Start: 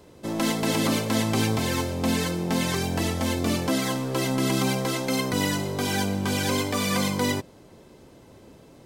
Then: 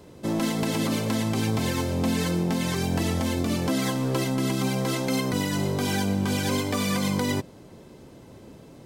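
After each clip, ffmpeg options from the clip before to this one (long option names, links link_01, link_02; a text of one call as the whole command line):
ffmpeg -i in.wav -af "equalizer=frequency=160:width_type=o:width=2:gain=4,alimiter=limit=-17dB:level=0:latency=1:release=154,volume=1dB" out.wav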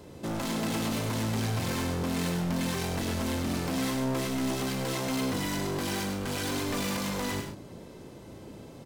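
ffmpeg -i in.wav -filter_complex "[0:a]volume=30dB,asoftclip=hard,volume=-30dB,asplit=2[link_01][link_02];[link_02]aecho=0:1:34.99|99.13|134.1:0.282|0.447|0.282[link_03];[link_01][link_03]amix=inputs=2:normalize=0" out.wav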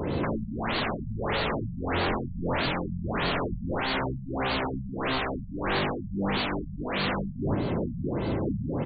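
ffmpeg -i in.wav -af "aeval=exprs='0.0668*sin(PI/2*5.01*val(0)/0.0668)':channel_layout=same,afftfilt=real='re*lt(b*sr/1024,210*pow(4700/210,0.5+0.5*sin(2*PI*1.6*pts/sr)))':imag='im*lt(b*sr/1024,210*pow(4700/210,0.5+0.5*sin(2*PI*1.6*pts/sr)))':win_size=1024:overlap=0.75,volume=1.5dB" out.wav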